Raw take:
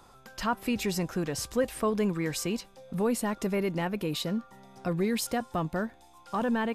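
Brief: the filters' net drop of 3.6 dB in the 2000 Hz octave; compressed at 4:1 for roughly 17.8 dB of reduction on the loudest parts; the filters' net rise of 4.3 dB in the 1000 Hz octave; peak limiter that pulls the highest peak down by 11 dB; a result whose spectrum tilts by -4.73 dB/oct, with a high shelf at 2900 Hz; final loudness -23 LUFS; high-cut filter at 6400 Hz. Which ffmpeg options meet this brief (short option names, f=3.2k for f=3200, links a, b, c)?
-af "lowpass=6.4k,equalizer=f=1k:t=o:g=7,equalizer=f=2k:t=o:g=-8.5,highshelf=f=2.9k:g=3,acompressor=threshold=-43dB:ratio=4,volume=25.5dB,alimiter=limit=-13.5dB:level=0:latency=1"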